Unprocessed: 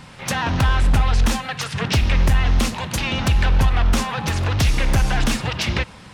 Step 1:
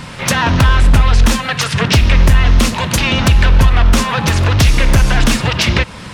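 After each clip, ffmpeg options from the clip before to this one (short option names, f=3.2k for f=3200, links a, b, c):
-filter_complex "[0:a]bandreject=f=790:w=12,asplit=2[a][b];[b]acompressor=threshold=-27dB:ratio=6,volume=2dB[c];[a][c]amix=inputs=2:normalize=0,volume=5dB"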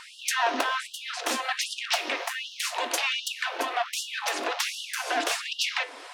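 -af "flanger=delay=8.7:depth=2.9:regen=-77:speed=0.4:shape=sinusoidal,equalizer=f=710:w=6.9:g=10.5,afftfilt=real='re*gte(b*sr/1024,250*pow(2800/250,0.5+0.5*sin(2*PI*1.3*pts/sr)))':imag='im*gte(b*sr/1024,250*pow(2800/250,0.5+0.5*sin(2*PI*1.3*pts/sr)))':win_size=1024:overlap=0.75,volume=-6dB"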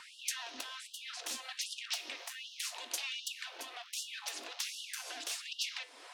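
-filter_complex "[0:a]acrossover=split=140|3000[a][b][c];[b]acompressor=threshold=-42dB:ratio=6[d];[a][d][c]amix=inputs=3:normalize=0,volume=-7dB"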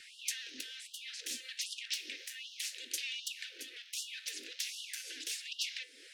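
-af "asuperstop=centerf=900:order=8:qfactor=0.75"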